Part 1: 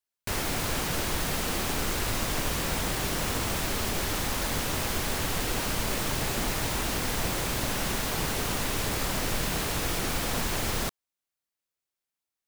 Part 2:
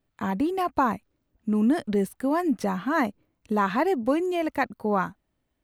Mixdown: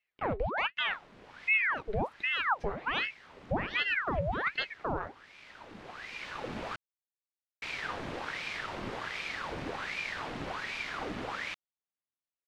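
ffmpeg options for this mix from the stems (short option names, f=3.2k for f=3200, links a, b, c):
-filter_complex "[0:a]adelay=650,volume=-5dB,asplit=3[a][b][c];[a]atrim=end=6.76,asetpts=PTS-STARTPTS,afade=t=out:st=6.756:d=0.004:c=hsin[d];[b]atrim=start=6.76:end=7.62,asetpts=PTS-STARTPTS,volume=0[e];[c]atrim=start=7.62,asetpts=PTS-STARTPTS,afade=t=in:d=0.004:c=hsin[f];[d][e][f]concat=n=3:v=0:a=1[g];[1:a]lowshelf=f=160:t=q:w=3:g=-12,alimiter=limit=-14.5dB:level=0:latency=1:release=95,flanger=delay=5.2:depth=4.9:regen=60:speed=1.7:shape=sinusoidal,volume=-1.5dB,asplit=2[h][i];[i]apad=whole_len=578728[j];[g][j]sidechaincompress=threshold=-44dB:ratio=8:attack=6.2:release=1130[k];[k][h]amix=inputs=2:normalize=0,lowpass=2.7k,aeval=exprs='val(0)*sin(2*PI*1300*n/s+1300*0.85/1.3*sin(2*PI*1.3*n/s))':c=same"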